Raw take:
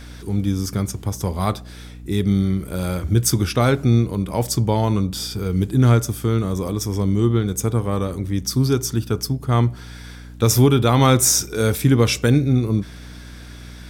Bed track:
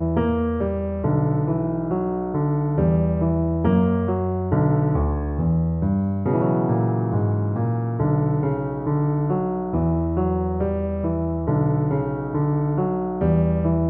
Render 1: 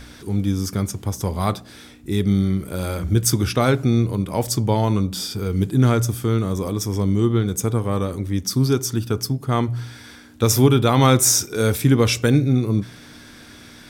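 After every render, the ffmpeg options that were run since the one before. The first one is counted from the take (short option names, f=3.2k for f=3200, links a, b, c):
-af "bandreject=f=60:t=h:w=4,bandreject=f=120:t=h:w=4,bandreject=f=180:t=h:w=4"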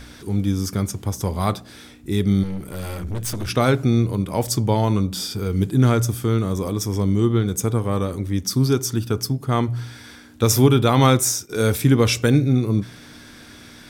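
-filter_complex "[0:a]asettb=1/sr,asplit=3[a][b][c];[a]atrim=end=2.434[d];[b]atrim=start=2.43:end=3.49,asetpts=PTS-STARTPTS,afade=t=in:d=0.004:c=qsin,afade=t=out:st=1.056:d=0.004:c=qsin,aeval=exprs='(tanh(15.8*val(0)+0.45)-tanh(0.45))/15.8':c=same[e];[c]atrim=start=3.486[f];[d][e]acrossfade=d=0.004:c1=hsin:c2=qsin[g];[g][f]acrossfade=d=0.004:c1=qsin:c2=hsin,asplit=2[h][i];[h]atrim=end=11.49,asetpts=PTS-STARTPTS,afade=t=out:st=11.07:d=0.42:silence=0.158489[j];[i]atrim=start=11.49,asetpts=PTS-STARTPTS,afade=t=in:d=0.004:c=hsin:silence=0.158489[k];[j][k]concat=n=2:v=0:a=1"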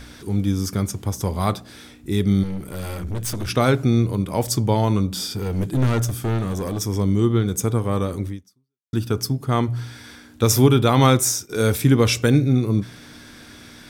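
-filter_complex "[0:a]asettb=1/sr,asplit=3[a][b][c];[a]atrim=end=5.364[d];[b]atrim=start=5.36:end=6.82,asetpts=PTS-STARTPTS,afade=t=in:d=0.004:c=qsin,afade=t=out:st=1.456:d=0.004:c=qsin,aeval=exprs='clip(val(0),-1,0.0944)':c=same[e];[c]atrim=start=6.816[f];[d][e]acrossfade=d=0.004:c1=hsin:c2=qsin[g];[g][f]acrossfade=d=0.004:c1=qsin:c2=hsin,asplit=2[h][i];[h]atrim=end=8.93,asetpts=PTS-STARTPTS,afade=t=out:st=8.28:d=0.65:c=exp[j];[i]atrim=start=8.93,asetpts=PTS-STARTPTS,afade=t=in:d=0.004:c=hsin[k];[j][k]concat=n=2:v=0:a=1"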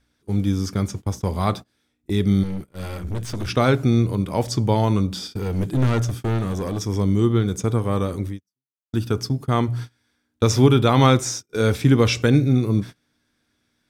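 -filter_complex "[0:a]acrossover=split=6400[a][b];[b]acompressor=threshold=-46dB:ratio=4:attack=1:release=60[c];[a][c]amix=inputs=2:normalize=0,agate=range=-27dB:threshold=-29dB:ratio=16:detection=peak"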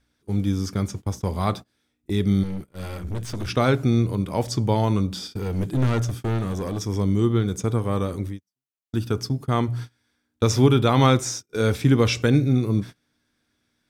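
-af "volume=-2dB"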